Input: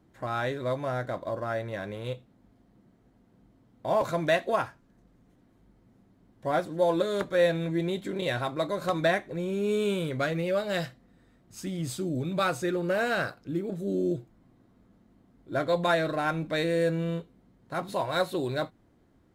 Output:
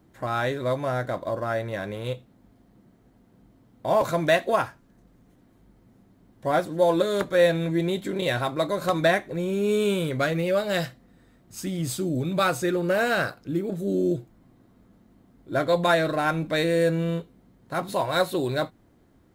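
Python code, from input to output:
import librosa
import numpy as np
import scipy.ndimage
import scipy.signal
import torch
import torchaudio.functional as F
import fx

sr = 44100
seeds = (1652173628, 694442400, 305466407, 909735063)

y = fx.high_shelf(x, sr, hz=11000.0, db=8.0)
y = F.gain(torch.from_numpy(y), 4.0).numpy()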